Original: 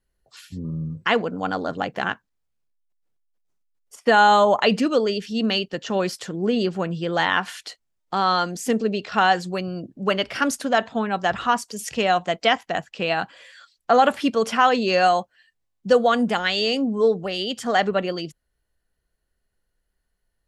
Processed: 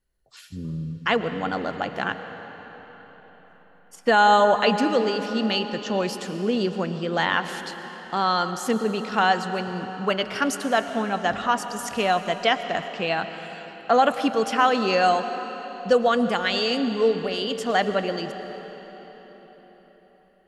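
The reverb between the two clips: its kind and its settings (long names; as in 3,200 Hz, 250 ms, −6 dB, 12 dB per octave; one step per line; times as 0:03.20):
comb and all-pass reverb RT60 4.8 s, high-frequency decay 0.8×, pre-delay 75 ms, DRR 9 dB
level −2 dB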